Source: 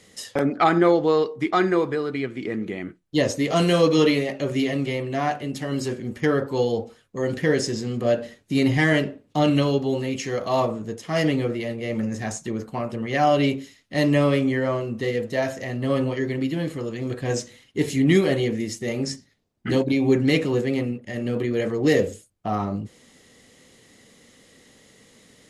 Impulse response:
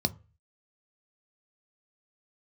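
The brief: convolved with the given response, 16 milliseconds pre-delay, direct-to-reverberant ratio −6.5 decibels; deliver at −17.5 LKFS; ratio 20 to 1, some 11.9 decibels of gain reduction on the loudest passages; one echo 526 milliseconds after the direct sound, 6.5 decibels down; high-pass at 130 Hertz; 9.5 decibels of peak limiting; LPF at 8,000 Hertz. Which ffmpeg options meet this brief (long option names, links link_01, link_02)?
-filter_complex "[0:a]highpass=130,lowpass=8000,acompressor=threshold=-25dB:ratio=20,alimiter=limit=-23.5dB:level=0:latency=1,aecho=1:1:526:0.473,asplit=2[link_01][link_02];[1:a]atrim=start_sample=2205,adelay=16[link_03];[link_02][link_03]afir=irnorm=-1:irlink=0,volume=0.5dB[link_04];[link_01][link_04]amix=inputs=2:normalize=0,volume=1dB"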